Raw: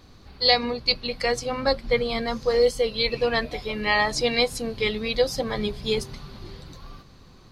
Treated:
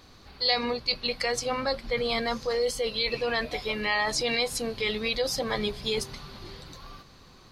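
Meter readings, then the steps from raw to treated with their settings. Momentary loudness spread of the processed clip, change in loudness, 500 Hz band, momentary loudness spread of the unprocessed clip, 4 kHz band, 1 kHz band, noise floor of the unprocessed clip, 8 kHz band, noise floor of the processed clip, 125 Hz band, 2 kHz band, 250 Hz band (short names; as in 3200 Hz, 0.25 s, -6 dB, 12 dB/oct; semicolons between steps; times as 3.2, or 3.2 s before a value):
17 LU, -4.0 dB, -5.5 dB, 9 LU, -3.0 dB, -4.0 dB, -50 dBFS, +1.5 dB, -53 dBFS, -6.0 dB, -3.0 dB, -4.5 dB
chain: low shelf 400 Hz -7.5 dB; in parallel at +1 dB: negative-ratio compressor -29 dBFS, ratio -1; on the sum: gain -6.5 dB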